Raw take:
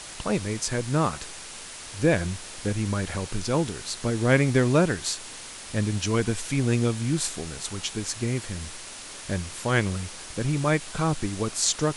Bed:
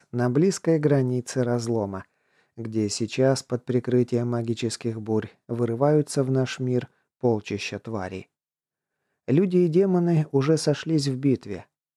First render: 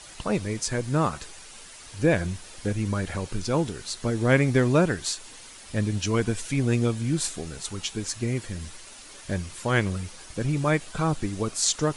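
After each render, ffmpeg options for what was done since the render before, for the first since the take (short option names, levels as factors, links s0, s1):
-af "afftdn=nr=8:nf=-41"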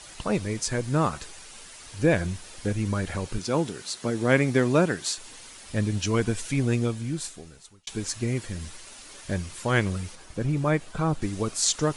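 -filter_complex "[0:a]asettb=1/sr,asplit=3[s0][s1][s2];[s0]atrim=end=3.384[s3];[s1]atrim=start=3.38:end=5.18,asetpts=PTS-STARTPTS,afade=t=in:d=0.004:c=qsin,afade=t=out:st=1.796:d=0.004:c=qsin,highpass=140[s4];[s2]atrim=start=5.176[s5];[s3][s4]acrossfade=d=0.004:c1=hsin:c2=qsin[s6];[s6][s5]acrossfade=d=0.004:c1=qsin:c2=hsin,asettb=1/sr,asplit=3[s7][s8][s9];[s7]atrim=end=10.154[s10];[s8]atrim=start=10.15:end=11.22,asetpts=PTS-STARTPTS,afade=t=in:d=0.004:c=qsin,afade=t=out:st=1.066:d=0.004:c=qsin,highshelf=f=2100:g=-7[s11];[s9]atrim=start=11.216[s12];[s10][s11]acrossfade=d=0.004:c1=hsin:c2=qsin[s13];[s13][s12]acrossfade=d=0.004:c1=qsin:c2=hsin,asplit=2[s14][s15];[s14]atrim=end=7.87,asetpts=PTS-STARTPTS,afade=t=out:st=6.57:d=1.3[s16];[s15]atrim=start=7.87,asetpts=PTS-STARTPTS,afade=t=in:d=0.004:c=hsin[s17];[s16][s17]concat=n=2:v=0:a=1"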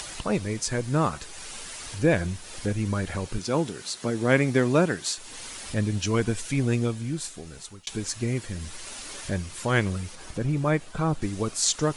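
-af "acompressor=mode=upward:threshold=0.0316:ratio=2.5"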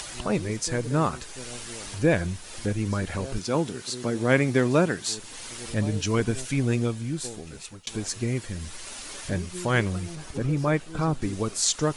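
-filter_complex "[1:a]volume=0.119[s0];[0:a][s0]amix=inputs=2:normalize=0"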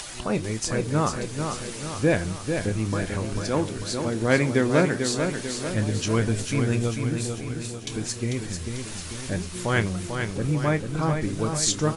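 -filter_complex "[0:a]asplit=2[s0][s1];[s1]adelay=27,volume=0.237[s2];[s0][s2]amix=inputs=2:normalize=0,aecho=1:1:444|888|1332|1776|2220|2664|3108:0.501|0.266|0.141|0.0746|0.0395|0.021|0.0111"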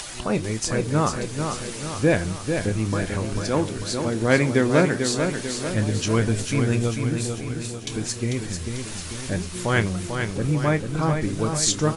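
-af "volume=1.26"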